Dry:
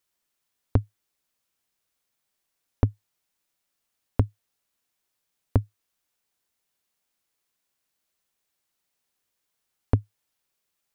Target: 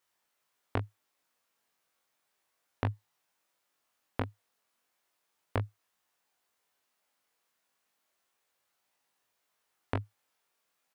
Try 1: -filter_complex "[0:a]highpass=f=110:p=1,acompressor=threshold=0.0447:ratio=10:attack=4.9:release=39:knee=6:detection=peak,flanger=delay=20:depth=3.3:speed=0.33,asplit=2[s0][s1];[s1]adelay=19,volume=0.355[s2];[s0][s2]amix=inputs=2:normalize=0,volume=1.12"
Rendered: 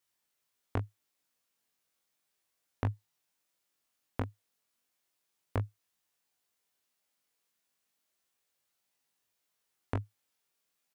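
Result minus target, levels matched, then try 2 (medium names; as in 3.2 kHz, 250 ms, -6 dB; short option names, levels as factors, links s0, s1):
1 kHz band -2.5 dB
-filter_complex "[0:a]highpass=f=110:p=1,equalizer=f=970:t=o:w=2.7:g=8,acompressor=threshold=0.0447:ratio=10:attack=4.9:release=39:knee=6:detection=peak,flanger=delay=20:depth=3.3:speed=0.33,asplit=2[s0][s1];[s1]adelay=19,volume=0.355[s2];[s0][s2]amix=inputs=2:normalize=0,volume=1.12"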